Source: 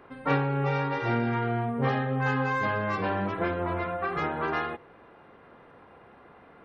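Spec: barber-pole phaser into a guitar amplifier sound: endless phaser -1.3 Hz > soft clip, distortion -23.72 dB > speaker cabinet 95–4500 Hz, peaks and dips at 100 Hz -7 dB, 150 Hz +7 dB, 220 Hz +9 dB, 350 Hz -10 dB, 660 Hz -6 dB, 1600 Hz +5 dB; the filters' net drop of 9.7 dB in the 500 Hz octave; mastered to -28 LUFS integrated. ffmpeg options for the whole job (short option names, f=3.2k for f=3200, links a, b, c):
-filter_complex "[0:a]equalizer=f=500:t=o:g=-7.5,asplit=2[a][b];[b]afreqshift=-1.3[c];[a][c]amix=inputs=2:normalize=1,asoftclip=threshold=-20.5dB,highpass=95,equalizer=f=100:t=q:w=4:g=-7,equalizer=f=150:t=q:w=4:g=7,equalizer=f=220:t=q:w=4:g=9,equalizer=f=350:t=q:w=4:g=-10,equalizer=f=660:t=q:w=4:g=-6,equalizer=f=1.6k:t=q:w=4:g=5,lowpass=f=4.5k:w=0.5412,lowpass=f=4.5k:w=1.3066,volume=3.5dB"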